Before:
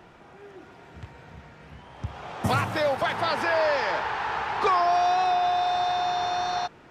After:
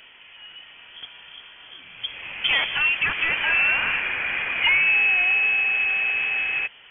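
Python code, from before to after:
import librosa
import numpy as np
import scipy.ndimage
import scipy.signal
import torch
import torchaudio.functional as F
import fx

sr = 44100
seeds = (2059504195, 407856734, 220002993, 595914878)

y = fx.low_shelf(x, sr, hz=150.0, db=-3.5)
y = fx.freq_invert(y, sr, carrier_hz=3300)
y = y * 10.0 ** (3.0 / 20.0)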